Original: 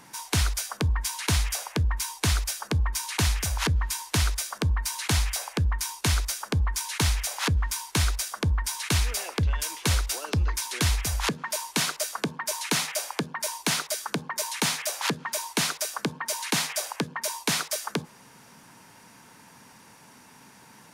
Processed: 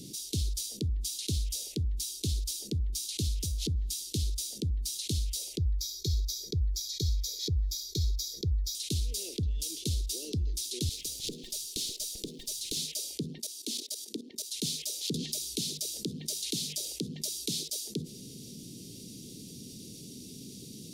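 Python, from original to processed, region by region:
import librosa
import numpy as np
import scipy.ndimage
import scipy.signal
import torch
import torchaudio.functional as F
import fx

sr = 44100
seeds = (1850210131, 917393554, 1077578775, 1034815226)

y = fx.chain(x, sr, fx.fixed_phaser(hz=2800.0, stages=6),
    fx.comb(ms=2.1, depth=0.78), at=(5.58, 8.75))
y = fx.chain(y, sr, fx.law_mismatch(coded='mu'),
    fx.highpass(hz=440.0, slope=12),
    fx.tube_stage(drive_db=13.0, bias=0.6), at=(10.89, 12.77))
y = fx.chain(y, sr, fx.cheby1_highpass(hz=220.0, order=6),
    fx.level_steps(step_db=15), at=(13.38, 14.51))
y = fx.chain(y, sr, fx.hum_notches(base_hz=50, count=5),
    fx.band_squash(depth_pct=100), at=(15.14, 17.54))
y = scipy.signal.sosfilt(scipy.signal.ellip(3, 1.0, 80, [390.0, 3700.0], 'bandstop', fs=sr, output='sos'), y)
y = fx.high_shelf(y, sr, hz=6800.0, db=-6.0)
y = fx.env_flatten(y, sr, amount_pct=50)
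y = y * librosa.db_to_amplitude(-9.0)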